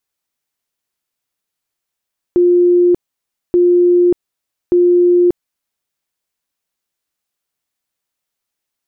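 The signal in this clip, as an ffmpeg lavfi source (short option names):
-f lavfi -i "aevalsrc='0.447*sin(2*PI*353*mod(t,1.18))*lt(mod(t,1.18),207/353)':d=3.54:s=44100"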